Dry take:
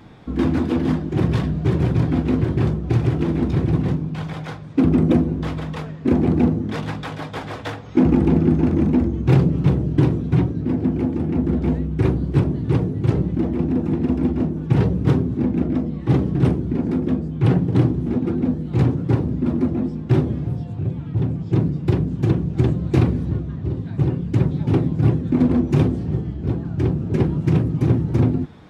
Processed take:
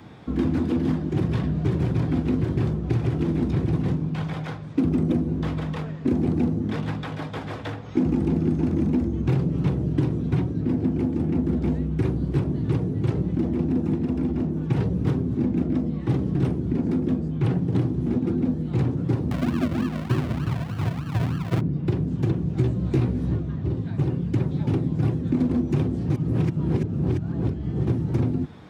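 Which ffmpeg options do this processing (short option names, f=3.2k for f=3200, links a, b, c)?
-filter_complex "[0:a]asettb=1/sr,asplit=3[a][b][c];[a]atrim=end=13.964[d];[b]atrim=start=13.96:end=14.57,asetpts=PTS-STARTPTS,afade=t=in:d=0.004:c=qsin,afade=t=out:st=0.606:d=0.004:c=qsin,acompressor=threshold=-21dB:ratio=2:attack=3.2:release=140:knee=1:detection=peak[e];[c]atrim=start=14.566[f];[d][e]acrossfade=d=0.004:c1=hsin:c2=qsin[g];[g][f]acrossfade=d=0.004:c1=qsin:c2=hsin,asettb=1/sr,asplit=3[h][i][j];[h]atrim=end=19.314[k];[i]atrim=start=19.31:end=21.61,asetpts=PTS-STARTPTS,afade=t=in:d=0.004:c=qsin,afade=t=out:st=2.296:d=0.004:c=qsin,acrusher=samples=42:mix=1:aa=0.000001:lfo=1:lforange=25.2:lforate=3.3[l];[j]atrim=start=21.606[m];[k][l]acrossfade=d=0.004:c1=hsin:c2=qsin[n];[n][m]acrossfade=d=0.004:c1=qsin:c2=hsin,asettb=1/sr,asplit=3[o][p][q];[o]atrim=end=22.574[r];[p]atrim=start=22.57:end=23.35,asetpts=PTS-STARTPTS,afade=t=in:d=0.004:c=qsin,afade=t=out:st=0.776:d=0.004:c=qsin,asplit=2[s][t];[t]adelay=16,volume=-3dB[u];[s][u]amix=inputs=2:normalize=0,atrim=end_sample=34398[v];[q]atrim=start=23.346[w];[r][v]acrossfade=d=0.004:c1=hsin:c2=qsin[x];[x][w]acrossfade=d=0.004:c1=qsin:c2=hsin,asplit=3[y][z][aa];[y]atrim=end=26.102[ab];[z]atrim=start=26.098:end=27.872,asetpts=PTS-STARTPTS,areverse[ac];[aa]atrim=start=27.868[ad];[ab][ac]acrossfade=d=0.004:c1=hsin:c2=hsin[ae];[ae][ad]acrossfade=d=0.004:c1=hsin:c2=hsin,acrossover=split=360|4000[af][ag][ah];[af]acompressor=threshold=-20dB:ratio=4[ai];[ag]acompressor=threshold=-34dB:ratio=4[aj];[ah]acompressor=threshold=-55dB:ratio=4[ak];[ai][aj][ak]amix=inputs=3:normalize=0,highpass=57"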